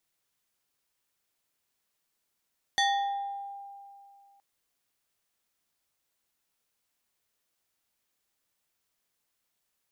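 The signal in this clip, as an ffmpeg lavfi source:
-f lavfi -i "aevalsrc='0.0891*pow(10,-3*t/2.52)*sin(2*PI*798*t+1.6*pow(10,-3*t/1.01)*sin(2*PI*3.33*798*t))':d=1.62:s=44100"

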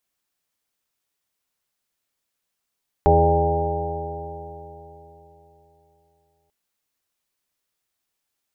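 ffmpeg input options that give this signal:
-f lavfi -i "aevalsrc='0.141*pow(10,-3*t/3.64)*sin(2*PI*80.41*t)+0.0794*pow(10,-3*t/3.64)*sin(2*PI*161.5*t)+0.0158*pow(10,-3*t/3.64)*sin(2*PI*243.92*t)+0.0447*pow(10,-3*t/3.64)*sin(2*PI*328.32*t)+0.15*pow(10,-3*t/3.64)*sin(2*PI*415.31*t)+0.0282*pow(10,-3*t/3.64)*sin(2*PI*505.5*t)+0.106*pow(10,-3*t/3.64)*sin(2*PI*599.42*t)+0.0299*pow(10,-3*t/3.64)*sin(2*PI*697.59*t)+0.158*pow(10,-3*t/3.64)*sin(2*PI*800.47*t)+0.0251*pow(10,-3*t/3.64)*sin(2*PI*908.49*t)':d=3.44:s=44100"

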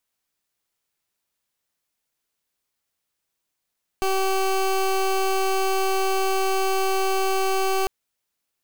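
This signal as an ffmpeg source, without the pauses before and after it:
-f lavfi -i "aevalsrc='0.0841*(2*lt(mod(383*t,1),0.21)-1)':d=3.85:s=44100"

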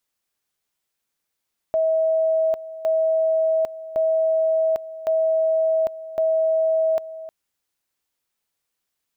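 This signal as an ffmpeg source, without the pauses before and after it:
-f lavfi -i "aevalsrc='pow(10,(-16.5-15.5*gte(mod(t,1.11),0.8))/20)*sin(2*PI*643*t)':d=5.55:s=44100"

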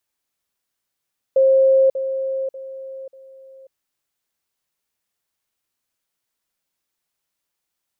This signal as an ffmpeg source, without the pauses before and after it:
-f lavfi -i "aevalsrc='pow(10,(-10.5-10*floor(t/0.59))/20)*sin(2*PI*533*t)*clip(min(mod(t,0.59),0.54-mod(t,0.59))/0.005,0,1)':d=2.36:s=44100"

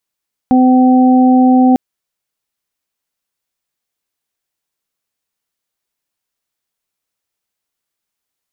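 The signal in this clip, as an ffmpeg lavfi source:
-f lavfi -i "aevalsrc='0.501*sin(2*PI*255*t)+0.1*sin(2*PI*510*t)+0.211*sin(2*PI*765*t)':d=1.25:s=44100"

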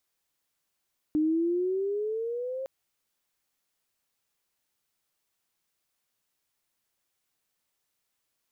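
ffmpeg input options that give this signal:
-f lavfi -i "aevalsrc='pow(10,(-21.5-10*t/1.51)/20)*sin(2*PI*302*1.51/(10*log(2)/12)*(exp(10*log(2)/12*t/1.51)-1))':d=1.51:s=44100"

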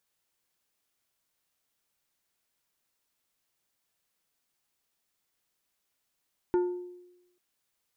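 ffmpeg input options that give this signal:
-f lavfi -i "aevalsrc='0.0944*pow(10,-3*t/0.96)*sin(2*PI*357*t)+0.0266*pow(10,-3*t/0.505)*sin(2*PI*892.5*t)+0.0075*pow(10,-3*t/0.364)*sin(2*PI*1428*t)+0.00211*pow(10,-3*t/0.311)*sin(2*PI*1785*t)+0.000596*pow(10,-3*t/0.259)*sin(2*PI*2320.5*t)':d=0.84:s=44100"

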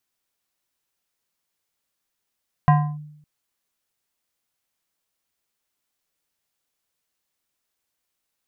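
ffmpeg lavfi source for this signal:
-f lavfi -i "aevalsrc='0.355*pow(10,-3*t/0.78)*sin(2*PI*150*t+0.86*clip(1-t/0.3,0,1)*sin(2*PI*5.85*150*t))':d=0.56:s=44100"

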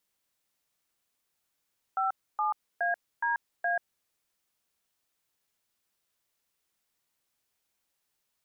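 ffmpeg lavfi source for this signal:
-f lavfi -i "aevalsrc='0.0398*clip(min(mod(t,0.418),0.136-mod(t,0.418))/0.002,0,1)*(eq(floor(t/0.418),0)*(sin(2*PI*770*mod(t,0.418))+sin(2*PI*1336*mod(t,0.418)))+eq(floor(t/0.418),1)*(sin(2*PI*852*mod(t,0.418))+sin(2*PI*1209*mod(t,0.418)))+eq(floor(t/0.418),2)*(sin(2*PI*697*mod(t,0.418))+sin(2*PI*1633*mod(t,0.418)))+eq(floor(t/0.418),3)*(sin(2*PI*941*mod(t,0.418))+sin(2*PI*1633*mod(t,0.418)))+eq(floor(t/0.418),4)*(sin(2*PI*697*mod(t,0.418))+sin(2*PI*1633*mod(t,0.418))))':d=2.09:s=44100"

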